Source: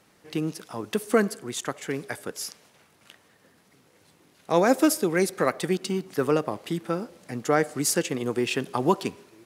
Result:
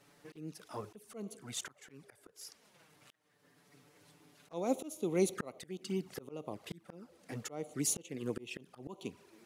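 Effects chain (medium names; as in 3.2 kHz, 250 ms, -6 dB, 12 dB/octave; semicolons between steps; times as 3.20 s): touch-sensitive flanger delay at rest 7.3 ms, full sweep at -22 dBFS; slow attack 644 ms; trim -1 dB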